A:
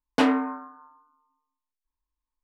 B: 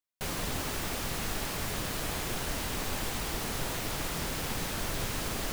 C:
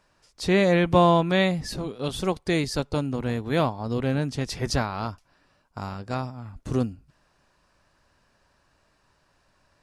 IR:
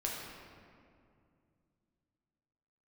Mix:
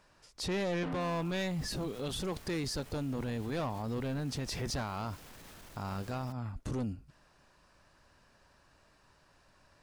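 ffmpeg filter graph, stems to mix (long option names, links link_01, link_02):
-filter_complex "[0:a]lowpass=frequency=2400:poles=1,acompressor=threshold=-22dB:ratio=6,adelay=650,volume=2dB[link_01];[1:a]alimiter=level_in=3dB:limit=-24dB:level=0:latency=1,volume=-3dB,asoftclip=type=tanh:threshold=-33.5dB,adelay=800,volume=-13.5dB[link_02];[2:a]asoftclip=type=tanh:threshold=-22dB,volume=0.5dB,asplit=2[link_03][link_04];[link_04]apad=whole_len=136109[link_05];[link_01][link_05]sidechaincompress=threshold=-34dB:ratio=8:attack=16:release=390[link_06];[link_06][link_02][link_03]amix=inputs=3:normalize=0,alimiter=level_in=5.5dB:limit=-24dB:level=0:latency=1:release=49,volume=-5.5dB"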